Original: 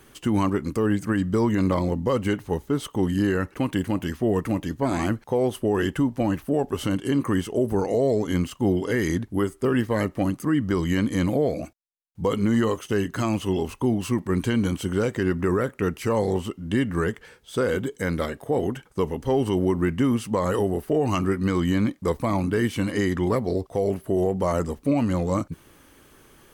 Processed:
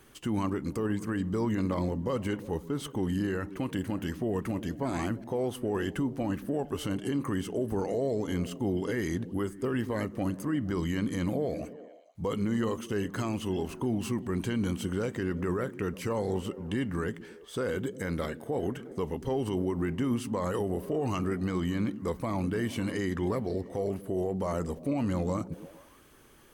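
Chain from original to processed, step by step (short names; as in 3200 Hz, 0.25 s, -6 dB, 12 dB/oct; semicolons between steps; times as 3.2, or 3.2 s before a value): limiter -17 dBFS, peak gain reduction 4 dB; delay with a stepping band-pass 0.116 s, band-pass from 180 Hz, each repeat 0.7 oct, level -10.5 dB; gain -5 dB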